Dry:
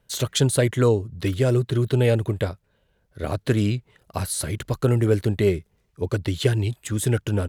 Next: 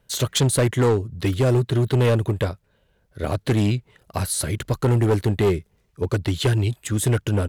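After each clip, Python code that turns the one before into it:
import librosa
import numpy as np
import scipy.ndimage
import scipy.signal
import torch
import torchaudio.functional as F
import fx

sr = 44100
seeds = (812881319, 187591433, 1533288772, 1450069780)

y = np.clip(x, -10.0 ** (-16.5 / 20.0), 10.0 ** (-16.5 / 20.0))
y = y * librosa.db_to_amplitude(2.5)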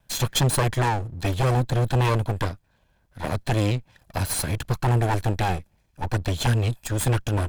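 y = fx.lower_of_two(x, sr, delay_ms=1.2)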